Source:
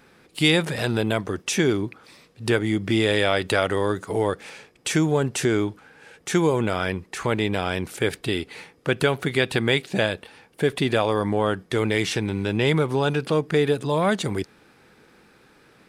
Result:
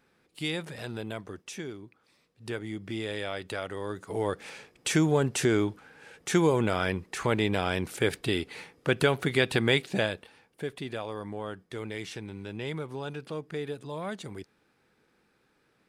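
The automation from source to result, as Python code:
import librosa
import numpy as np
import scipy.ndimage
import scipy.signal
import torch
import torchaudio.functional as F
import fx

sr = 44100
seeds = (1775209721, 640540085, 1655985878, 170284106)

y = fx.gain(x, sr, db=fx.line((1.33, -13.5), (1.8, -20.0), (2.58, -13.5), (3.75, -13.5), (4.5, -3.0), (9.83, -3.0), (10.77, -14.5)))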